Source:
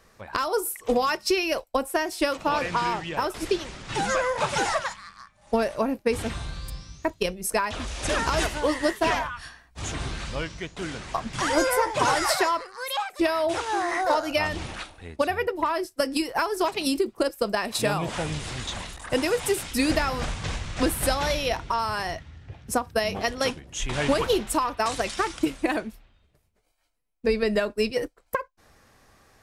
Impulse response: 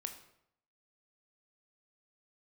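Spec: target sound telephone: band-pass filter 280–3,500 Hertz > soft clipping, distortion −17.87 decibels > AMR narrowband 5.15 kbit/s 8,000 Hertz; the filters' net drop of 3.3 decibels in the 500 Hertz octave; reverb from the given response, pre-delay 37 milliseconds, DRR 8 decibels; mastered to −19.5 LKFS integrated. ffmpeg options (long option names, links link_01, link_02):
-filter_complex "[0:a]equalizer=frequency=500:width_type=o:gain=-3.5,asplit=2[link_01][link_02];[1:a]atrim=start_sample=2205,adelay=37[link_03];[link_02][link_03]afir=irnorm=-1:irlink=0,volume=-6dB[link_04];[link_01][link_04]amix=inputs=2:normalize=0,highpass=280,lowpass=3500,asoftclip=threshold=-18dB,volume=12.5dB" -ar 8000 -c:a libopencore_amrnb -b:a 5150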